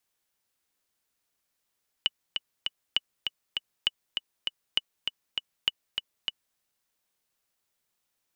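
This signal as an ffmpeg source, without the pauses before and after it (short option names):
-f lavfi -i "aevalsrc='pow(10,(-10-5.5*gte(mod(t,3*60/199),60/199))/20)*sin(2*PI*2950*mod(t,60/199))*exp(-6.91*mod(t,60/199)/0.03)':d=4.52:s=44100"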